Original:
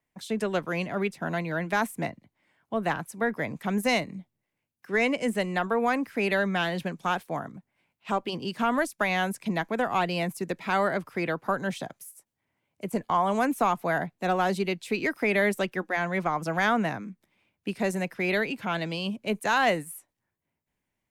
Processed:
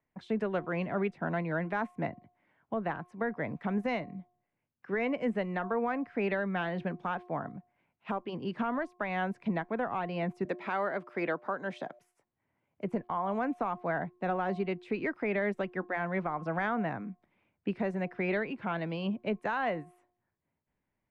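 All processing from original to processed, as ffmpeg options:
-filter_complex "[0:a]asettb=1/sr,asplit=3[s0][s1][s2];[s0]atrim=end=10.454[s3];[s1]atrim=start=10.45:end=11.99,asetpts=PTS-STARTPTS,afade=t=in:d=0.004:c=qsin,afade=t=out:st=1.536:d=0.004:c=qsin,highpass=250,aemphasis=mode=production:type=cd,aeval=exprs='val(0)+0.00178*sin(2*PI*600*n/s)':c=same[s4];[s2]atrim=start=11.986[s5];[s3][s4]acrossfade=d=0.004:c1=hsin:c2=qsin[s6];[s6][s5]acrossfade=d=0.004:c1=qsin:c2=hsin,lowpass=1900,bandreject=f=357.8:t=h:w=4,bandreject=f=715.6:t=h:w=4,bandreject=f=1073.4:t=h:w=4,alimiter=limit=0.0794:level=0:latency=1:release=481"

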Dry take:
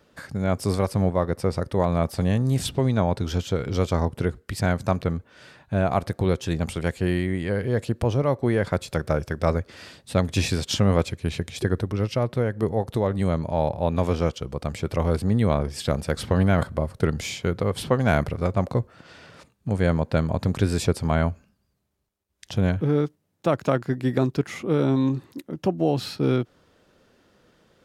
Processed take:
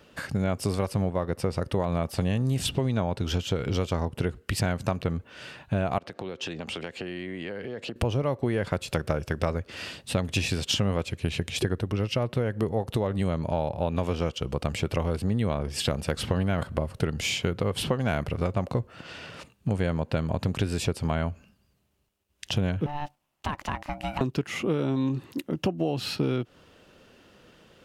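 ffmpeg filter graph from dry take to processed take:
-filter_complex "[0:a]asettb=1/sr,asplit=3[s0][s1][s2];[s0]atrim=end=5.984[s3];[s1]atrim=start=5.98:end=7.96,asetpts=PTS-STARTPTS,afade=t=in:d=0.004:c=qsin,afade=t=out:st=1.976:d=0.004:c=qsin,acrossover=split=190 6300:gain=0.178 1 0.141[s4][s5][s6];[s4][s5][s6]amix=inputs=3:normalize=0,acompressor=threshold=0.0178:ratio=10:attack=3.2:release=140:knee=1:detection=peak[s7];[s2]atrim=start=7.956[s8];[s3][s7]acrossfade=d=0.004:c1=hsin:c2=qsin[s9];[s9][s8]acrossfade=d=0.004:c1=qsin:c2=hsin,asettb=1/sr,asplit=3[s10][s11][s12];[s10]atrim=end=22.864[s13];[s11]atrim=start=22.86:end=24.21,asetpts=PTS-STARTPTS,afade=t=in:d=0.004:c=qsin,afade=t=out:st=1.346:d=0.004:c=qsin,bass=f=250:g=-14,treble=f=4000:g=-1,acompressor=threshold=0.0398:ratio=3:attack=3.2:release=140:knee=1:detection=peak,aeval=exprs='val(0)*sin(2*PI*440*n/s)':c=same[s14];[s12]atrim=start=24.206[s15];[s13][s14]acrossfade=d=0.004:c1=hsin:c2=qsin[s16];[s16][s15]acrossfade=d=0.004:c1=qsin:c2=hsin,equalizer=f=2800:t=o:w=0.33:g=8,acompressor=threshold=0.0447:ratio=6,volume=1.58"

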